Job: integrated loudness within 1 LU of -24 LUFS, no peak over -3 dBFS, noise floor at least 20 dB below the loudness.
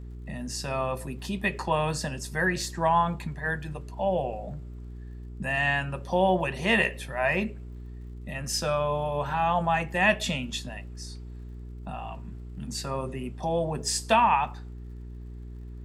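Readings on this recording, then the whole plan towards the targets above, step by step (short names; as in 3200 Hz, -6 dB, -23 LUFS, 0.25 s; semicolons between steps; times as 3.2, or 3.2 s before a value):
ticks 44/s; hum 60 Hz; harmonics up to 420 Hz; hum level -38 dBFS; loudness -27.5 LUFS; peak -9.0 dBFS; loudness target -24.0 LUFS
-> de-click; de-hum 60 Hz, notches 7; gain +3.5 dB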